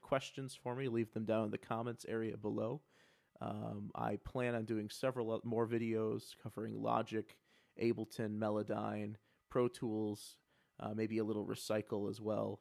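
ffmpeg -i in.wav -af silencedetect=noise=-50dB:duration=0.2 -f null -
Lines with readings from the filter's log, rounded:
silence_start: 2.78
silence_end: 3.36 | silence_duration: 0.58
silence_start: 7.32
silence_end: 7.79 | silence_duration: 0.47
silence_start: 9.15
silence_end: 9.52 | silence_duration: 0.36
silence_start: 10.32
silence_end: 10.80 | silence_duration: 0.48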